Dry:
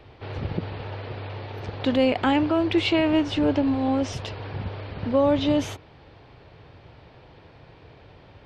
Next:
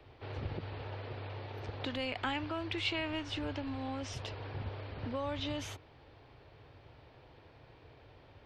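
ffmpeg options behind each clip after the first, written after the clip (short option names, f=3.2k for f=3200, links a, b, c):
-filter_complex "[0:a]equalizer=f=180:t=o:w=0.2:g=-15,acrossover=split=120|1000[a][b][c];[b]acompressor=threshold=-31dB:ratio=6[d];[a][d][c]amix=inputs=3:normalize=0,volume=-8dB"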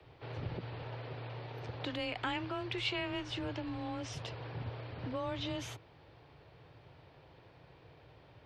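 -af "afreqshift=18,volume=-1dB"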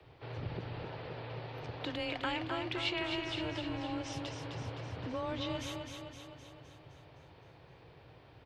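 -af "aecho=1:1:258|516|774|1032|1290|1548|1806|2064:0.531|0.303|0.172|0.0983|0.056|0.0319|0.0182|0.0104"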